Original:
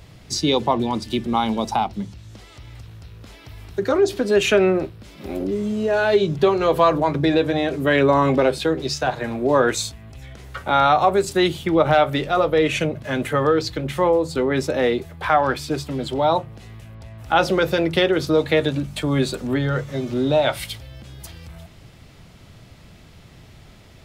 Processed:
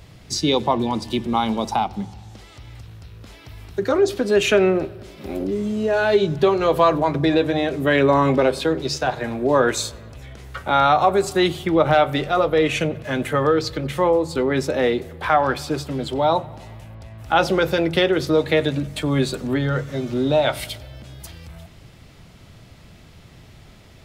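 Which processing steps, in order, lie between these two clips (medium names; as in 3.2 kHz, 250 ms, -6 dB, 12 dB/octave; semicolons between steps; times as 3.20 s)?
filtered feedback delay 93 ms, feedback 72%, low-pass 4 kHz, level -23 dB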